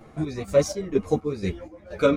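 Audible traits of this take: chopped level 2.1 Hz, depth 60%, duty 50%; a shimmering, thickened sound

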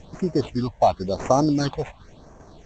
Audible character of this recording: tremolo saw down 2.5 Hz, depth 30%; aliases and images of a low sample rate 5000 Hz, jitter 0%; phasing stages 6, 0.95 Hz, lowest notch 320–3800 Hz; G.722

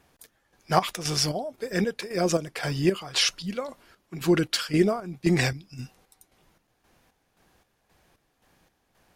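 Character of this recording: chopped level 1.9 Hz, depth 60%, duty 50%

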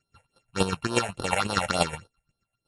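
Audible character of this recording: a buzz of ramps at a fixed pitch in blocks of 32 samples; chopped level 8.3 Hz, depth 60%, duty 20%; phasing stages 6, 3.5 Hz, lowest notch 300–2200 Hz; MP3

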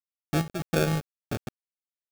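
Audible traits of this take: a quantiser's noise floor 6-bit, dither none; chopped level 1.7 Hz, depth 65%, duty 70%; aliases and images of a low sample rate 1000 Hz, jitter 0%

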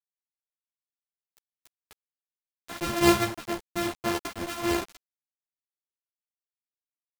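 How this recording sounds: a buzz of ramps at a fixed pitch in blocks of 128 samples; tremolo triangle 1.7 Hz, depth 75%; a quantiser's noise floor 6-bit, dither none; a shimmering, thickened sound

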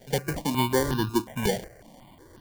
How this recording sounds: aliases and images of a low sample rate 1300 Hz, jitter 0%; notches that jump at a steady rate 5.5 Hz 300–2200 Hz

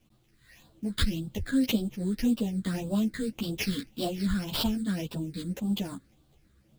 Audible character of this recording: aliases and images of a low sample rate 8500 Hz, jitter 20%; phasing stages 8, 1.8 Hz, lowest notch 770–2000 Hz; a quantiser's noise floor 12-bit, dither none; a shimmering, thickened sound

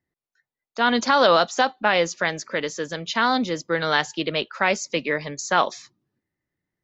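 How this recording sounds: noise floor -92 dBFS; spectral tilt -3.0 dB/oct

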